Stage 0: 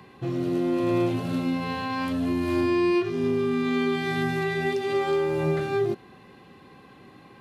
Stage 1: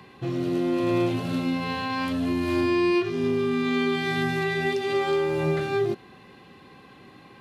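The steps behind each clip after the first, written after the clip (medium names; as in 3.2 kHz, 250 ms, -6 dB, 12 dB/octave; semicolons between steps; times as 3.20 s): peaking EQ 3.5 kHz +3.5 dB 2.1 oct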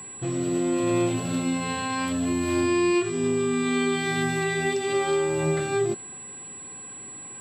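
whistle 7.8 kHz -38 dBFS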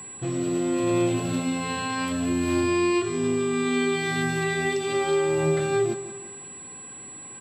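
feedback delay 172 ms, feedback 50%, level -14 dB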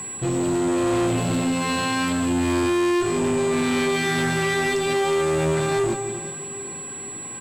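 echo whose repeats swap between lows and highs 259 ms, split 1.4 kHz, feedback 56%, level -13 dB; valve stage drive 27 dB, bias 0.35; trim +8.5 dB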